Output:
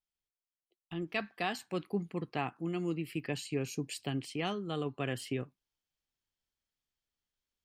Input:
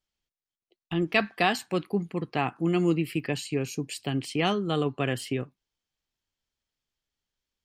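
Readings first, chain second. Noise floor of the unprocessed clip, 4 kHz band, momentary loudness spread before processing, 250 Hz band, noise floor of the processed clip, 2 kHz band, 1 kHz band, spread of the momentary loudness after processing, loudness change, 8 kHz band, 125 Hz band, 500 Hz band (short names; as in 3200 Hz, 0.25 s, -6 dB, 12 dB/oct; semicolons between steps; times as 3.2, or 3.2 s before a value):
under -85 dBFS, -8.5 dB, 8 LU, -8.5 dB, under -85 dBFS, -9.5 dB, -9.5 dB, 4 LU, -9.0 dB, -6.0 dB, -8.0 dB, -8.5 dB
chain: vocal rider 0.5 s; gain -8.5 dB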